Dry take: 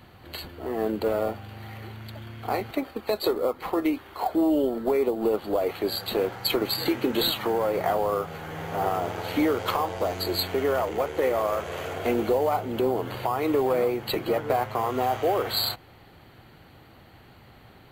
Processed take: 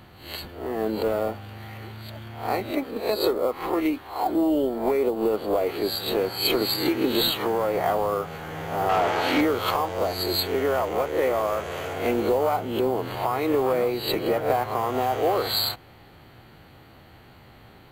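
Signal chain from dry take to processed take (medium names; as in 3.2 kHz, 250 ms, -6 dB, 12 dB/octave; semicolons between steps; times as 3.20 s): reverse spectral sustain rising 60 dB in 0.45 s; 8.89–9.41 s: overdrive pedal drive 18 dB, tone 3.1 kHz, clips at -12.5 dBFS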